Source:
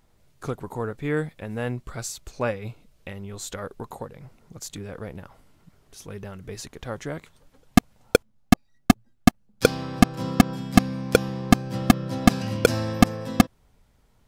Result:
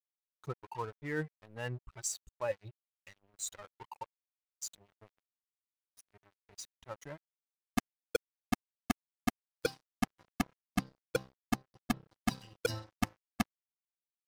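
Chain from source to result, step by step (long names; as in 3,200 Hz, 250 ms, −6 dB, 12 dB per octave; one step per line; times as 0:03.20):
spectral dynamics exaggerated over time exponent 2
reversed playback
downward compressor 12 to 1, threshold −34 dBFS, peak gain reduction 24.5 dB
reversed playback
dead-zone distortion −53 dBFS
level +4 dB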